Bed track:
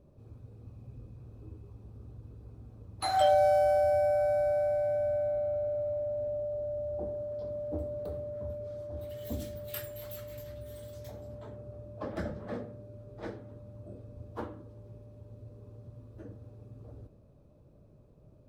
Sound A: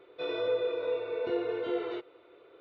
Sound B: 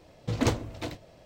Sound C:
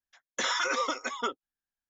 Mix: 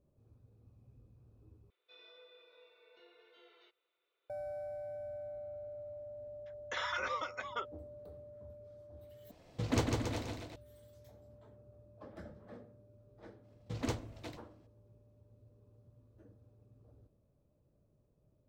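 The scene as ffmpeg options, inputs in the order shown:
-filter_complex "[2:a]asplit=2[a][b];[0:a]volume=-14dB[c];[1:a]aderivative[d];[3:a]highpass=500,lowpass=3.3k[e];[a]aecho=1:1:150|277.5|385.9|478|556.3|622.9:0.631|0.398|0.251|0.158|0.1|0.0631[f];[b]agate=range=-33dB:threshold=-49dB:ratio=3:release=100:detection=peak[g];[c]asplit=3[h][i][j];[h]atrim=end=1.704[k];[d]atrim=end=2.6,asetpts=PTS-STARTPTS,volume=-9.5dB[l];[i]atrim=start=4.296:end=9.314[m];[f]atrim=end=1.25,asetpts=PTS-STARTPTS,volume=-6.5dB[n];[j]atrim=start=10.556[o];[e]atrim=end=1.89,asetpts=PTS-STARTPTS,volume=-7dB,afade=t=in:d=0.004:c=hsin,afade=t=out:st=1.886:d=0.004:c=hsin,adelay=6330[p];[g]atrim=end=1.25,asetpts=PTS-STARTPTS,volume=-11dB,afade=t=in:d=0.004:c=hsin,afade=t=out:st=1.246:d=0.004:c=hsin,adelay=13420[q];[k][l]acrossfade=d=0.004:c1=hsin:c2=hsin[r];[r][m]acrossfade=d=0.004:c1=hsin:c2=hsin[s];[s][n]acrossfade=d=0.004:c1=hsin:c2=hsin[t];[t][o]acrossfade=d=0.004:c1=hsin:c2=hsin[u];[u][p][q]amix=inputs=3:normalize=0"

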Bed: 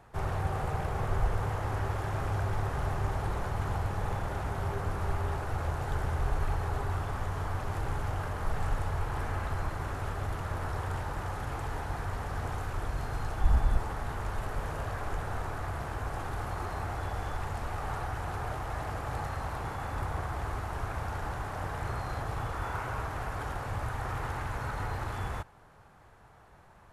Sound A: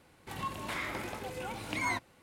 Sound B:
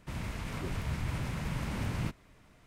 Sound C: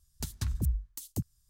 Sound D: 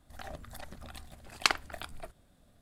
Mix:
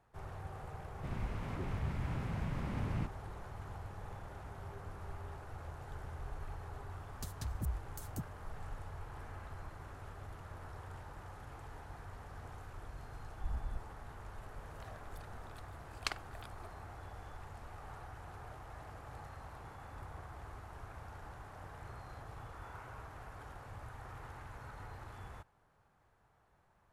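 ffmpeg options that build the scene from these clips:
-filter_complex "[0:a]volume=-14.5dB[a];[2:a]equalizer=f=14k:t=o:w=2.5:g=-14,atrim=end=2.66,asetpts=PTS-STARTPTS,volume=-3.5dB,afade=t=in:d=0.004:c=hsin,afade=t=out:st=2.656:d=0.004:c=hsin,adelay=960[b];[3:a]atrim=end=1.49,asetpts=PTS-STARTPTS,volume=-8.5dB,afade=t=in:d=0.004:c=hsin,afade=t=out:st=1.486:d=0.004:c=hsin,adelay=7000[c];[4:a]atrim=end=2.61,asetpts=PTS-STARTPTS,volume=-12dB,afade=t=in:d=0.004:c=hsin,afade=t=out:st=2.606:d=0.004:c=hsin,adelay=14610[d];[a][b][c][d]amix=inputs=4:normalize=0"

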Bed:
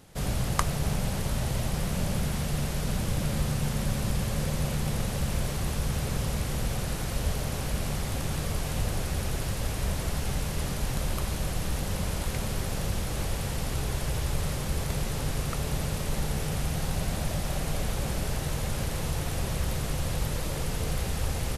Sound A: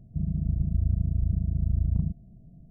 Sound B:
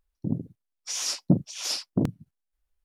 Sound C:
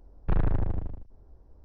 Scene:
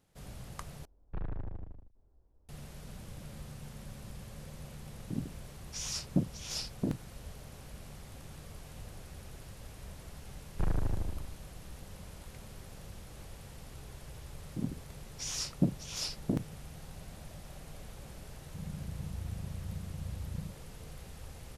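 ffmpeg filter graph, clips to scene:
-filter_complex "[3:a]asplit=2[a][b];[2:a]asplit=2[c][d];[0:a]volume=-18dB[e];[1:a]highpass=78[f];[e]asplit=2[g][h];[g]atrim=end=0.854[i];[a]atrim=end=1.64,asetpts=PTS-STARTPTS,volume=-13.5dB[j];[h]atrim=start=2.486[k];[c]atrim=end=2.84,asetpts=PTS-STARTPTS,volume=-8.5dB,afade=t=in:d=0.004:c=hsin,afade=t=out:st=2.836:d=0.004:c=hsin,adelay=4860[l];[b]atrim=end=1.64,asetpts=PTS-STARTPTS,volume=-6dB,afade=t=in:d=0.004:c=hsin,afade=t=out:st=1.636:d=0.004:c=hsin,adelay=10310[m];[d]atrim=end=2.84,asetpts=PTS-STARTPTS,volume=-7.5dB,afade=t=in:d=0.004:c=hsin,afade=t=out:st=2.836:d=0.004:c=hsin,adelay=14320[n];[f]atrim=end=2.7,asetpts=PTS-STARTPTS,volume=-12dB,afade=t=in:d=0.004:c=hsin,afade=t=out:st=2.696:d=0.004:c=hsin,adelay=18390[o];[i][j]acrossfade=d=0.004:c1=hsin:c2=hsin[p];[p][k]acrossfade=d=0.004:c1=hsin:c2=hsin[q];[q][l][m][n][o]amix=inputs=5:normalize=0"

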